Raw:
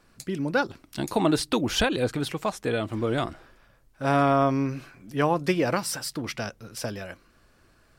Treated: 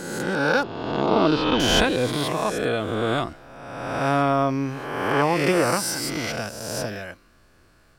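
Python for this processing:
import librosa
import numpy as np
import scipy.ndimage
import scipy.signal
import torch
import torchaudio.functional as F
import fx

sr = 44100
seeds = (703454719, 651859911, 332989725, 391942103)

y = fx.spec_swells(x, sr, rise_s=1.51)
y = fx.lowpass(y, sr, hz=3800.0, slope=24, at=(0.63, 1.6))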